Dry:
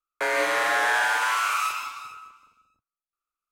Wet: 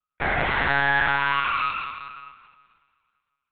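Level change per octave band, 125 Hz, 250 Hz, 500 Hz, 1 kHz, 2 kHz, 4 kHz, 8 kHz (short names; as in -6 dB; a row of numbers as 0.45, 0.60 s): n/a, +7.0 dB, -3.0 dB, +1.0 dB, +1.5 dB, -0.5 dB, under -40 dB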